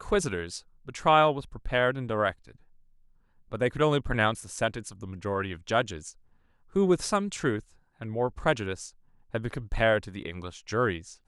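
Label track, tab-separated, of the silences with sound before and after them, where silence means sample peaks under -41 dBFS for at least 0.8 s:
2.510000	3.520000	silence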